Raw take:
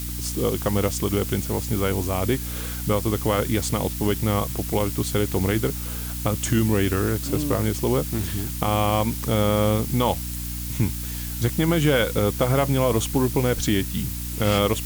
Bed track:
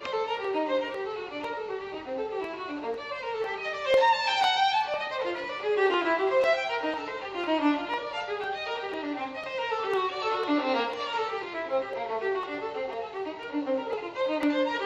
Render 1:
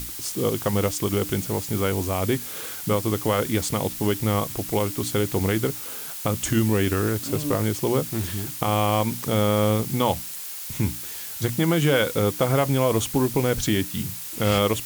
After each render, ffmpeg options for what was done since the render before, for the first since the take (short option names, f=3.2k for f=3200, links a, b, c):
-af "bandreject=f=60:t=h:w=6,bandreject=f=120:t=h:w=6,bandreject=f=180:t=h:w=6,bandreject=f=240:t=h:w=6,bandreject=f=300:t=h:w=6"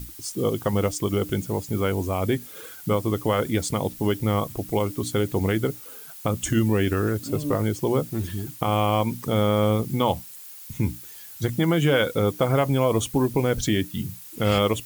-af "afftdn=nr=11:nf=-35"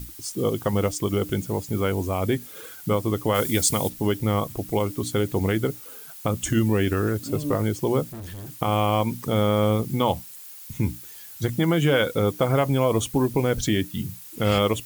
-filter_complex "[0:a]asplit=3[a][b][c];[a]afade=t=out:st=3.34:d=0.02[d];[b]highshelf=f=3.5k:g=11.5,afade=t=in:st=3.34:d=0.02,afade=t=out:st=3.88:d=0.02[e];[c]afade=t=in:st=3.88:d=0.02[f];[d][e][f]amix=inputs=3:normalize=0,asettb=1/sr,asplit=3[g][h][i];[g]atrim=end=8.044[j];[h]atrim=start=8.04:end=8.56,asetpts=PTS-STARTPTS,afade=t=in:d=0.004:c=qsin,afade=t=out:st=0.516:d=0.004:c=qsin,volume=34.5dB,asoftclip=hard,volume=-34.5dB[k];[i]atrim=start=8.556[l];[j][k]acrossfade=d=0.004:c1=hsin:c2=qsin[m];[m][l]acrossfade=d=0.004:c1=qsin:c2=hsin"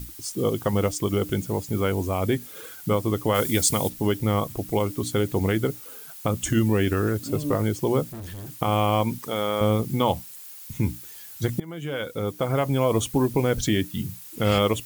-filter_complex "[0:a]asettb=1/sr,asplit=3[a][b][c];[a]atrim=end=9.184[d];[b]atrim=start=9.18:end=9.61,asetpts=PTS-STARTPTS,afade=t=in:d=0.004:c=qsin,afade=t=out:st=0.426:d=0.004:c=qsin,highpass=f=570:p=1[e];[c]atrim=start=9.606[f];[d][e]acrossfade=d=0.004:c1=hsin:c2=qsin[g];[g][f]acrossfade=d=0.004:c1=qsin:c2=hsin,asplit=2[h][i];[h]atrim=end=11.6,asetpts=PTS-STARTPTS,afade=t=out:st=11.596:d=0.004:c=hsin:silence=0.0841395[j];[i]atrim=start=11.6,asetpts=PTS-STARTPTS,afade=t=in:d=1.36:silence=0.0841395[k];[j][k]concat=n=2:v=0:a=1"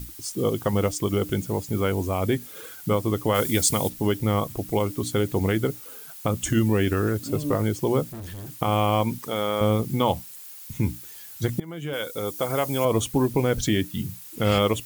-filter_complex "[0:a]asettb=1/sr,asplit=3[a][b][c];[a]atrim=end=11.934[d];[b]atrim=start=11.93:end=12.85,asetpts=PTS-STARTPTS,afade=t=in:d=0.004:c=qsin,afade=t=out:st=0.916:d=0.004:c=qsin,bass=f=250:g=-7,treble=f=4k:g=9[e];[c]atrim=start=12.846[f];[d][e]acrossfade=d=0.004:c1=hsin:c2=qsin[g];[g][f]acrossfade=d=0.004:c1=qsin:c2=hsin"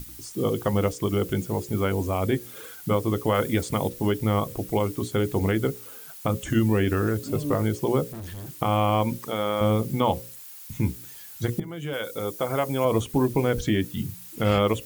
-filter_complex "[0:a]bandreject=f=60:t=h:w=6,bandreject=f=120:t=h:w=6,bandreject=f=180:t=h:w=6,bandreject=f=240:t=h:w=6,bandreject=f=300:t=h:w=6,bandreject=f=360:t=h:w=6,bandreject=f=420:t=h:w=6,bandreject=f=480:t=h:w=6,bandreject=f=540:t=h:w=6,acrossover=split=2600[a][b];[b]acompressor=threshold=-36dB:ratio=4:attack=1:release=60[c];[a][c]amix=inputs=2:normalize=0"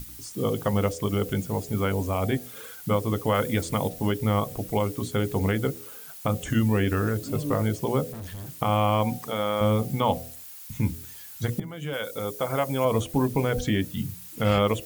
-af "equalizer=f=350:w=7.1:g=-9.5,bandreject=f=82.87:t=h:w=4,bandreject=f=165.74:t=h:w=4,bandreject=f=248.61:t=h:w=4,bandreject=f=331.48:t=h:w=4,bandreject=f=414.35:t=h:w=4,bandreject=f=497.22:t=h:w=4,bandreject=f=580.09:t=h:w=4,bandreject=f=662.96:t=h:w=4,bandreject=f=745.83:t=h:w=4"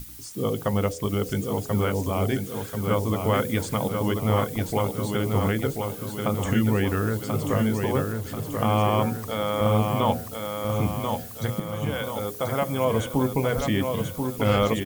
-af "aecho=1:1:1036|2072|3108|4144|5180|6216:0.562|0.276|0.135|0.0662|0.0324|0.0159"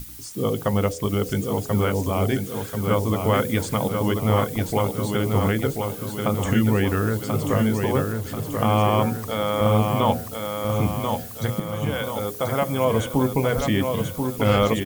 -af "volume=2.5dB"